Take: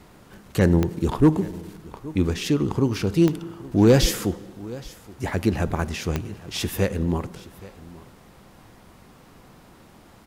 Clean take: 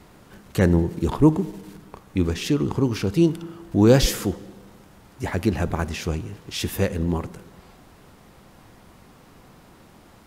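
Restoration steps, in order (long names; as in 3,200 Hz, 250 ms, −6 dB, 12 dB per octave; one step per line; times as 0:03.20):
clipped peaks rebuilt −8.5 dBFS
click removal
echo removal 823 ms −20 dB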